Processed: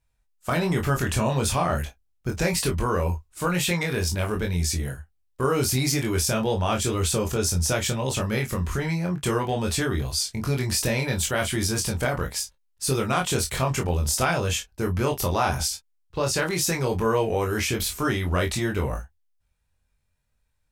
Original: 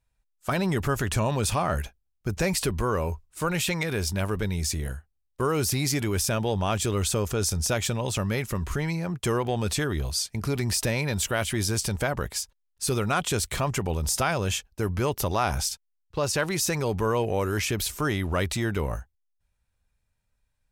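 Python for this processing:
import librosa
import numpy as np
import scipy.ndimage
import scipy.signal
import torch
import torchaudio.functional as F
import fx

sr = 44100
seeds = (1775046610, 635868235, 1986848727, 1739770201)

y = fx.room_early_taps(x, sr, ms=(23, 36, 51), db=(-3.0, -11.0, -14.5))
y = fx.wow_flutter(y, sr, seeds[0], rate_hz=2.1, depth_cents=25.0)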